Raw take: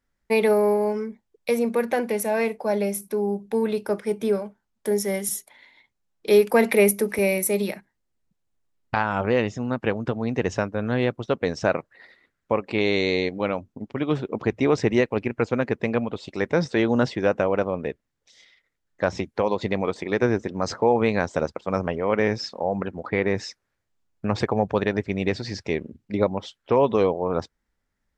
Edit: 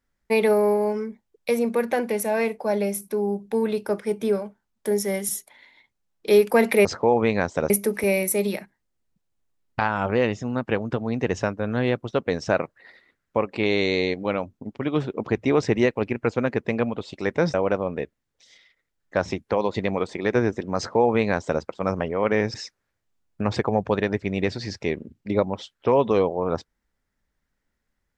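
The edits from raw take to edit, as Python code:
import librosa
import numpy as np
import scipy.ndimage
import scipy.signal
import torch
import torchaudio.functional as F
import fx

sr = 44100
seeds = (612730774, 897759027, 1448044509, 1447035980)

y = fx.edit(x, sr, fx.cut(start_s=16.69, length_s=0.72),
    fx.duplicate(start_s=20.64, length_s=0.85, to_s=6.85),
    fx.cut(start_s=22.41, length_s=0.97), tone=tone)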